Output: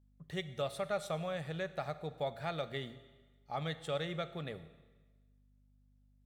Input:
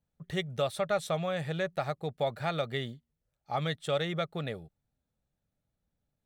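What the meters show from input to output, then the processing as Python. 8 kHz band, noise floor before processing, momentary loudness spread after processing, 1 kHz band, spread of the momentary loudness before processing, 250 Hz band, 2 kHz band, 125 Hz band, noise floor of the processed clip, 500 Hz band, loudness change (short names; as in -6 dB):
-6.5 dB, -85 dBFS, 8 LU, -6.5 dB, 7 LU, -6.5 dB, -6.5 dB, -6.5 dB, -68 dBFS, -6.5 dB, -6.5 dB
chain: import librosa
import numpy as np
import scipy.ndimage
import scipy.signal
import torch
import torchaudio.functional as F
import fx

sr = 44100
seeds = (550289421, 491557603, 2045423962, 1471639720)

y = fx.hum_notches(x, sr, base_hz=60, count=2)
y = fx.add_hum(y, sr, base_hz=50, snr_db=26)
y = fx.rev_schroeder(y, sr, rt60_s=1.3, comb_ms=25, drr_db=13.0)
y = y * librosa.db_to_amplitude(-6.5)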